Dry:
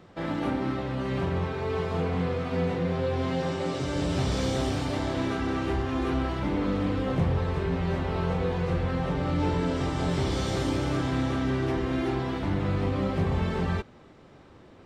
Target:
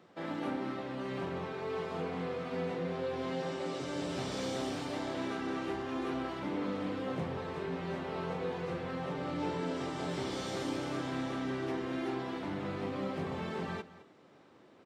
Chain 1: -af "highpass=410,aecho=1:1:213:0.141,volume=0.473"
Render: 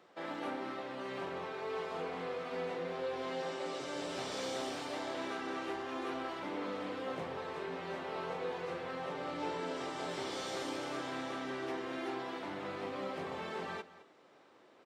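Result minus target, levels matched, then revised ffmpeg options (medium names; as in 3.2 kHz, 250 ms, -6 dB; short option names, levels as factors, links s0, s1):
250 Hz band -4.0 dB
-af "highpass=200,aecho=1:1:213:0.141,volume=0.473"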